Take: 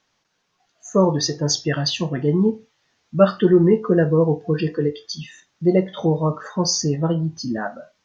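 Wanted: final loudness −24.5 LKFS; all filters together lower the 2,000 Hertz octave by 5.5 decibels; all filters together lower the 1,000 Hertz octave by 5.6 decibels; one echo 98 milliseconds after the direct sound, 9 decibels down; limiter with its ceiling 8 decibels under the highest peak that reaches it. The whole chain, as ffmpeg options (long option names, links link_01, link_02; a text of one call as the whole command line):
ffmpeg -i in.wav -af "equalizer=frequency=1000:width_type=o:gain=-6,equalizer=frequency=2000:width_type=o:gain=-5,alimiter=limit=-13dB:level=0:latency=1,aecho=1:1:98:0.355,volume=-1dB" out.wav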